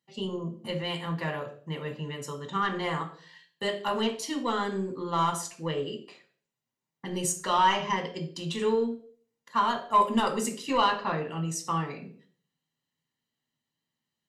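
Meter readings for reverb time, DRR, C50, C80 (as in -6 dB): 0.50 s, 3.5 dB, 11.5 dB, 16.0 dB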